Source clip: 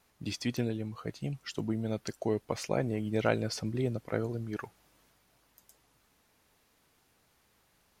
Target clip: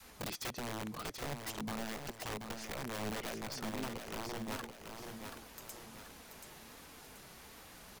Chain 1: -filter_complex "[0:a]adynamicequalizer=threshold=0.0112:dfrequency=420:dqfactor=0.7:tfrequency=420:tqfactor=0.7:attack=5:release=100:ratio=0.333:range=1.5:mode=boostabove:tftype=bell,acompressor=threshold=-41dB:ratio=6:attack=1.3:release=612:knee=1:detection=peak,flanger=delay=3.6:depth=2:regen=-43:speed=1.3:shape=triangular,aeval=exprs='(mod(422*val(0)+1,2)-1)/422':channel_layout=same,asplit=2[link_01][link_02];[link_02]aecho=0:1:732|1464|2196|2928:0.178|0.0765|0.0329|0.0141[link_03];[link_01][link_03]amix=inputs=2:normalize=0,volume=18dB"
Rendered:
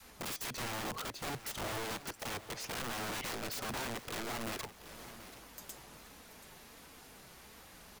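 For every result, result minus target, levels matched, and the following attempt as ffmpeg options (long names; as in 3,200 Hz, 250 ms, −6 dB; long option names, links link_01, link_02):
downward compressor: peak gain reduction −6 dB; echo-to-direct −8.5 dB
-filter_complex "[0:a]adynamicequalizer=threshold=0.0112:dfrequency=420:dqfactor=0.7:tfrequency=420:tqfactor=0.7:attack=5:release=100:ratio=0.333:range=1.5:mode=boostabove:tftype=bell,acompressor=threshold=-48.5dB:ratio=6:attack=1.3:release=612:knee=1:detection=peak,flanger=delay=3.6:depth=2:regen=-43:speed=1.3:shape=triangular,aeval=exprs='(mod(422*val(0)+1,2)-1)/422':channel_layout=same,asplit=2[link_01][link_02];[link_02]aecho=0:1:732|1464|2196|2928:0.178|0.0765|0.0329|0.0141[link_03];[link_01][link_03]amix=inputs=2:normalize=0,volume=18dB"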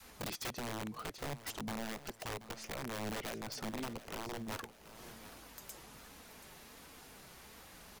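echo-to-direct −8.5 dB
-filter_complex "[0:a]adynamicequalizer=threshold=0.0112:dfrequency=420:dqfactor=0.7:tfrequency=420:tqfactor=0.7:attack=5:release=100:ratio=0.333:range=1.5:mode=boostabove:tftype=bell,acompressor=threshold=-48.5dB:ratio=6:attack=1.3:release=612:knee=1:detection=peak,flanger=delay=3.6:depth=2:regen=-43:speed=1.3:shape=triangular,aeval=exprs='(mod(422*val(0)+1,2)-1)/422':channel_layout=same,asplit=2[link_01][link_02];[link_02]aecho=0:1:732|1464|2196|2928|3660:0.473|0.203|0.0875|0.0376|0.0162[link_03];[link_01][link_03]amix=inputs=2:normalize=0,volume=18dB"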